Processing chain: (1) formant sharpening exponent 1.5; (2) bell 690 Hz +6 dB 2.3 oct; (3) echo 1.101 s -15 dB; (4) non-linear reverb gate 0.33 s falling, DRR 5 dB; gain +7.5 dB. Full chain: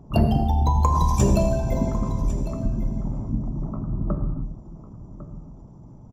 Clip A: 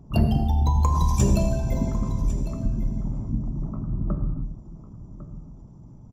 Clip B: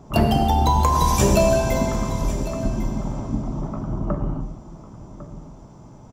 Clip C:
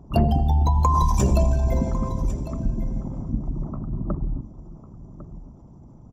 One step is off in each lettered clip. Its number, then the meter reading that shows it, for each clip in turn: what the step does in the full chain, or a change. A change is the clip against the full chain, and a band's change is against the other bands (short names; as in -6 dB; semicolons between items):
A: 2, 500 Hz band -4.0 dB; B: 1, 125 Hz band -7.5 dB; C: 4, momentary loudness spread change -4 LU